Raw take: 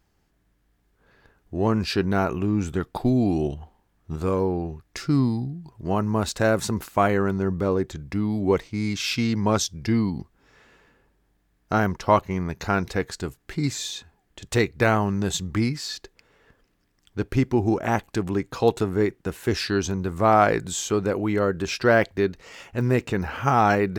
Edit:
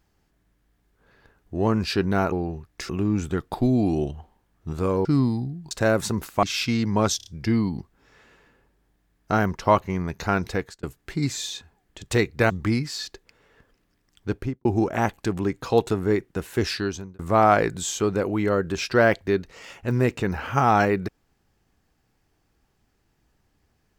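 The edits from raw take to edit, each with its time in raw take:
4.48–5.05 s: move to 2.32 s
5.71–6.30 s: delete
7.02–8.93 s: delete
9.67 s: stutter 0.03 s, 4 plays
12.95–13.24 s: fade out
14.91–15.40 s: delete
17.20–17.55 s: studio fade out
19.59–20.09 s: fade out

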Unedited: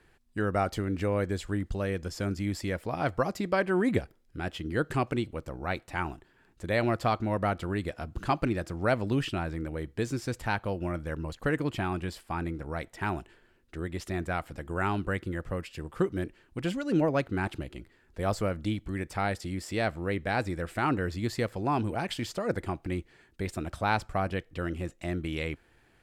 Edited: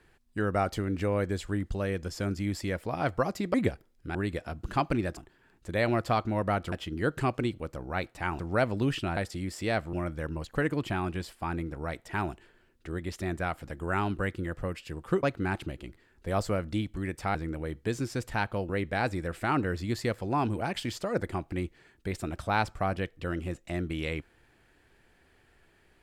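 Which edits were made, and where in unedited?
3.54–3.84 s: delete
4.45–6.12 s: swap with 7.67–8.69 s
9.47–10.81 s: swap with 19.27–20.03 s
16.11–17.15 s: delete

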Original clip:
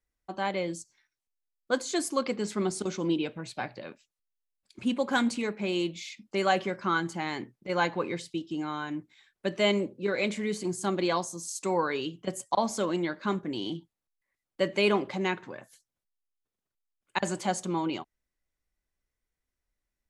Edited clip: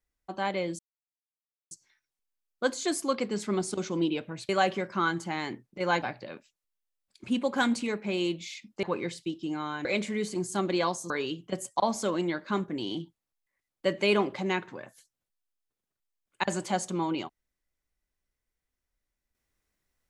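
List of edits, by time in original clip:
0.79 s: insert silence 0.92 s
6.38–7.91 s: move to 3.57 s
8.93–10.14 s: delete
11.39–11.85 s: delete

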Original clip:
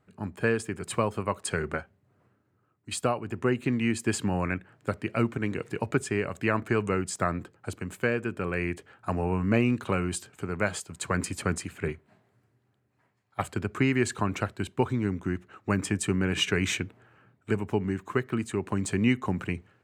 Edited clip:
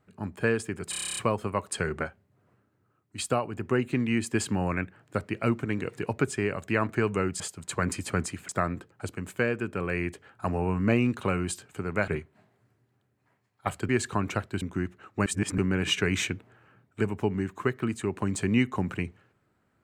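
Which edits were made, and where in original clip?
0.90 s: stutter 0.03 s, 10 plays
10.72–11.81 s: move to 7.13 s
13.62–13.95 s: delete
14.68–15.12 s: delete
15.76–16.08 s: reverse

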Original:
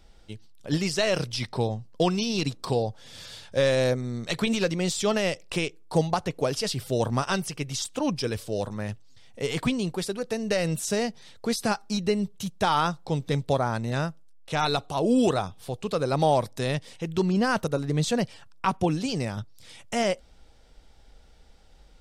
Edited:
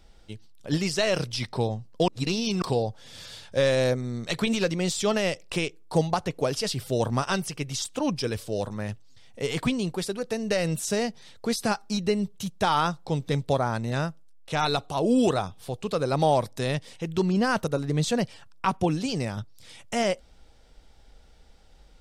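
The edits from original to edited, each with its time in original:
2.08–2.62 s: reverse

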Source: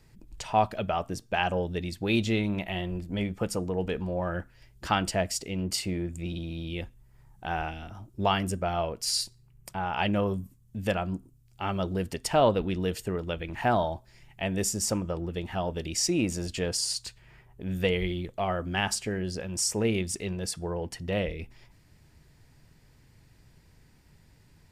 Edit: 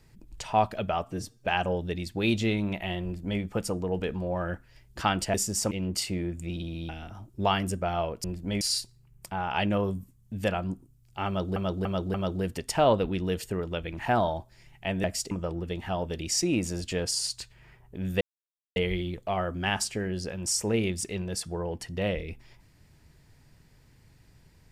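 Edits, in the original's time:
1.04–1.32 s: stretch 1.5×
2.90–3.27 s: copy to 9.04 s
5.20–5.47 s: swap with 14.60–14.97 s
6.65–7.69 s: delete
11.70–11.99 s: loop, 4 plays
17.87 s: insert silence 0.55 s

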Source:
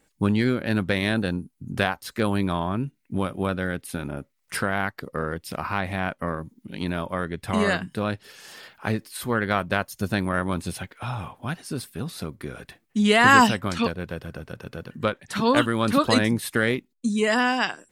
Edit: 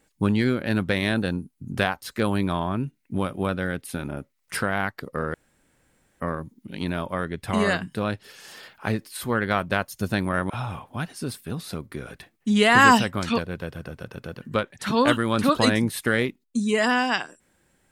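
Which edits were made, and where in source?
5.34–6.20 s: room tone
10.50–10.99 s: delete

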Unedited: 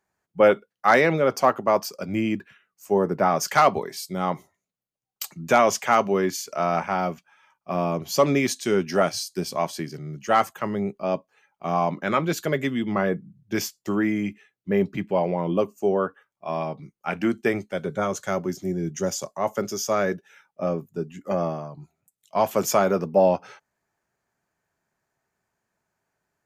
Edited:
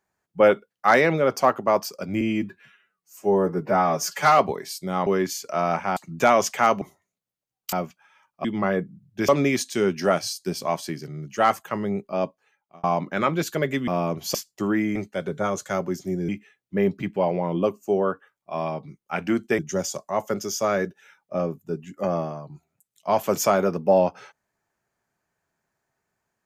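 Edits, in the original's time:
2.21–3.66 s: stretch 1.5×
4.34–5.25 s: swap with 6.10–7.00 s
7.72–8.19 s: swap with 12.78–13.62 s
11.15–11.74 s: fade out
17.53–18.86 s: move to 14.23 s

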